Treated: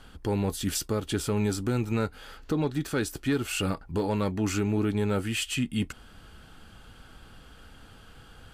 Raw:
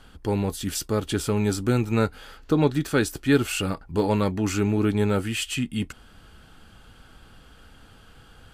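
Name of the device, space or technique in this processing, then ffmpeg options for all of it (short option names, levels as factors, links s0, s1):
soft clipper into limiter: -af "asoftclip=type=tanh:threshold=0.316,alimiter=limit=0.119:level=0:latency=1:release=377"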